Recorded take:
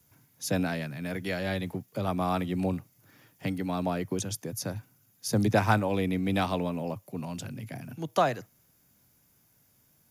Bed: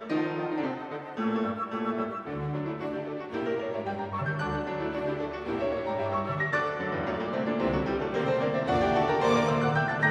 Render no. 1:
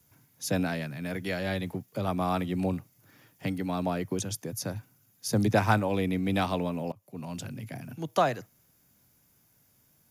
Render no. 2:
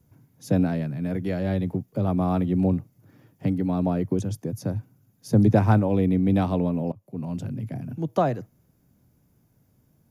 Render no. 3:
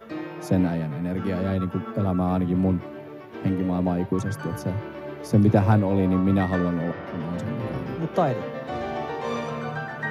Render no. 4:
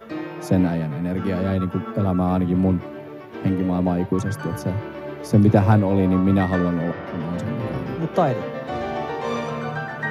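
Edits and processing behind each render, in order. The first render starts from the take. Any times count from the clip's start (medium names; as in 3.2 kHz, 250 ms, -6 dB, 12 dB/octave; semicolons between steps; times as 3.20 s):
6.92–7.35 s: fade in linear, from -22.5 dB
tilt shelf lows +9 dB, about 850 Hz
add bed -5 dB
trim +3 dB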